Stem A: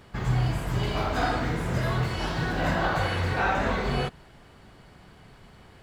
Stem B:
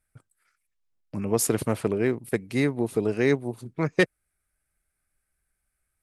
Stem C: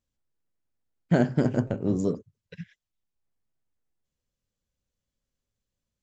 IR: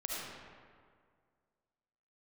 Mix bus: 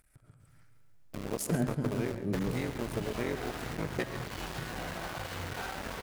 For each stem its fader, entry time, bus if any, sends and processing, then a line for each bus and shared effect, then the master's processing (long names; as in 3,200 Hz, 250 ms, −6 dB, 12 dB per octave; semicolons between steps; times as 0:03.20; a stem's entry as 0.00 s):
−1.5 dB, 2.20 s, bus A, no send, no echo send, low-pass filter 4,300 Hz; downward compressor 10 to 1, threshold −32 dBFS, peak gain reduction 13 dB
−7.0 dB, 0.00 s, bus A, send −17.5 dB, echo send −16 dB, sub-harmonics by changed cycles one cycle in 3, muted
−4.5 dB, 0.40 s, no bus, no send, no echo send, harmonic and percussive parts rebalanced percussive −16 dB
bus A: 0.0 dB, centre clipping without the shift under −35.5 dBFS; downward compressor 4 to 1, threshold −31 dBFS, peak gain reduction 8 dB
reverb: on, RT60 2.0 s, pre-delay 30 ms
echo: repeating echo 138 ms, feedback 36%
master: upward compression, threshold −41 dBFS